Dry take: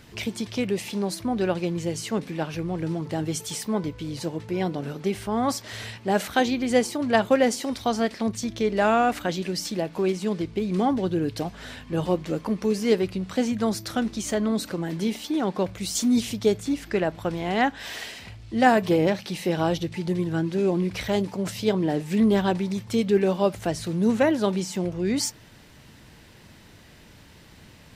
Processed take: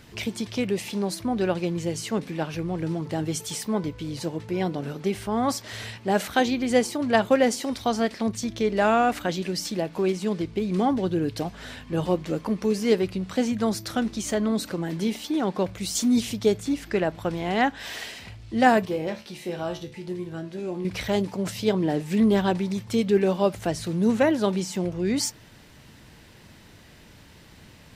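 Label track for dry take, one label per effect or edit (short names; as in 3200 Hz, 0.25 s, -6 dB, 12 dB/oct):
18.850000	20.850000	resonator 72 Hz, decay 0.33 s, mix 80%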